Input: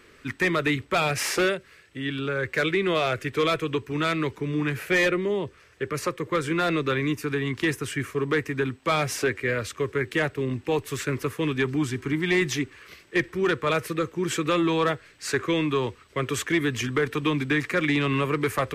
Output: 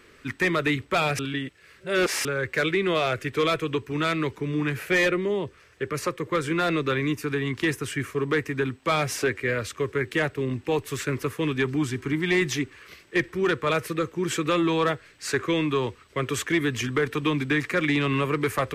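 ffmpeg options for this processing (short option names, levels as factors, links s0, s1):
-filter_complex "[0:a]asplit=3[s0][s1][s2];[s0]atrim=end=1.192[s3];[s1]atrim=start=1.188:end=2.252,asetpts=PTS-STARTPTS,areverse[s4];[s2]atrim=start=2.248[s5];[s3][s4]acrossfade=d=0.004:c1=hsin:c2=hsin[s6];[s6][s5]acrossfade=d=0.004:c1=hsin:c2=hsin"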